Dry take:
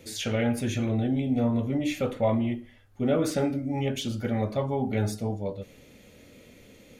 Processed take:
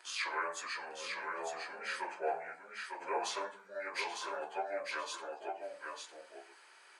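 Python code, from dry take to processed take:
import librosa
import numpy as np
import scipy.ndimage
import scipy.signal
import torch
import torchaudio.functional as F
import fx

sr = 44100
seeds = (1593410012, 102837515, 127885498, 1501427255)

y = fx.pitch_bins(x, sr, semitones=-6.0)
y = scipy.signal.sosfilt(scipy.signal.butter(4, 640.0, 'highpass', fs=sr, output='sos'), y)
y = fx.peak_eq(y, sr, hz=860.0, db=7.5, octaves=1.0)
y = y + 10.0 ** (-4.5 / 20.0) * np.pad(y, (int(902 * sr / 1000.0), 0))[:len(y)]
y = y * librosa.db_to_amplitude(-1.0)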